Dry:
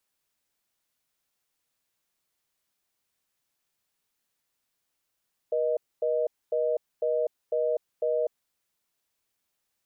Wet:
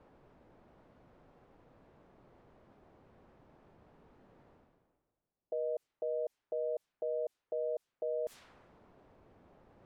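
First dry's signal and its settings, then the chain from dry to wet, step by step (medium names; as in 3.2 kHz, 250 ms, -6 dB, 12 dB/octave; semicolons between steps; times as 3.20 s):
call progress tone reorder tone, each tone -26 dBFS 2.87 s
level-controlled noise filter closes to 620 Hz, open at -25 dBFS; reverse; upward compressor, threshold -37 dBFS; reverse; peak limiter -29 dBFS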